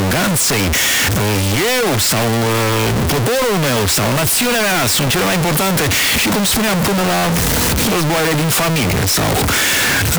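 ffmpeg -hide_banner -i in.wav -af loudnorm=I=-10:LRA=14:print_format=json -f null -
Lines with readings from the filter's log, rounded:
"input_i" : "-13.8",
"input_tp" : "-8.4",
"input_lra" : "0.4",
"input_thresh" : "-23.8",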